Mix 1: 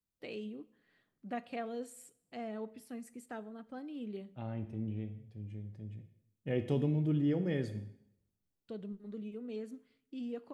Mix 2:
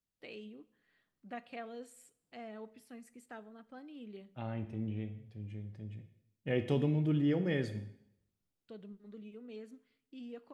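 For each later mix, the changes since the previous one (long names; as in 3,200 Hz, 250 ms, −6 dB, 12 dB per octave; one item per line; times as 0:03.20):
first voice −7.0 dB
master: add parametric band 2,200 Hz +5.5 dB 3 octaves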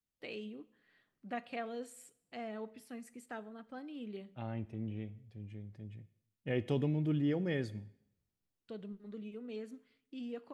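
first voice +4.0 dB
second voice: send −9.5 dB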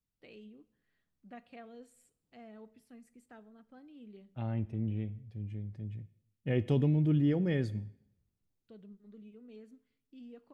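first voice −11.5 dB
master: add low-shelf EQ 230 Hz +9.5 dB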